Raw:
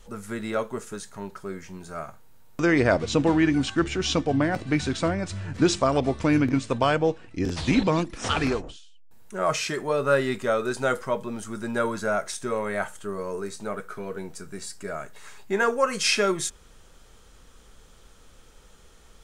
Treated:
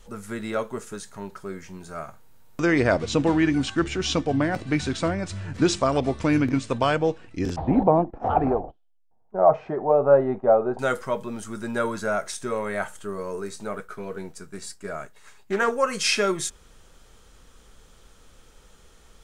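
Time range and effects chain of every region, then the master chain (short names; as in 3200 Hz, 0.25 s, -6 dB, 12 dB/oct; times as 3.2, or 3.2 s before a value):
7.56–10.79 gate -39 dBFS, range -15 dB + synth low-pass 760 Hz, resonance Q 5.6
13.78–15.72 expander -38 dBFS + Doppler distortion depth 0.16 ms
whole clip: dry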